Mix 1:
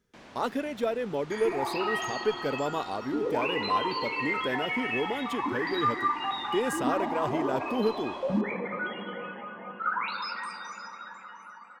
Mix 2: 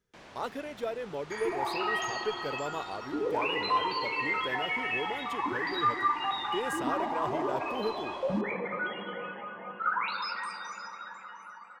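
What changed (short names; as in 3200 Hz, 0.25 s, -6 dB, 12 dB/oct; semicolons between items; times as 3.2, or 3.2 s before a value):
speech -5.0 dB; master: add bell 240 Hz -6.5 dB 0.61 oct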